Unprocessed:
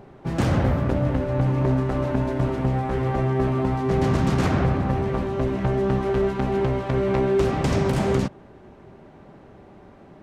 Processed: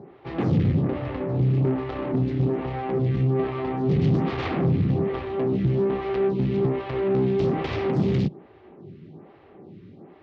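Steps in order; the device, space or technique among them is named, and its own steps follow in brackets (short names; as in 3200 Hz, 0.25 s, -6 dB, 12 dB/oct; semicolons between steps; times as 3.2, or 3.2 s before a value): vibe pedal into a guitar amplifier (photocell phaser 1.2 Hz; tube stage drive 24 dB, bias 0.5; speaker cabinet 94–4400 Hz, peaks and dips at 100 Hz +5 dB, 160 Hz +8 dB, 350 Hz +4 dB, 610 Hz -7 dB, 970 Hz -6 dB, 1500 Hz -8 dB); gain +5 dB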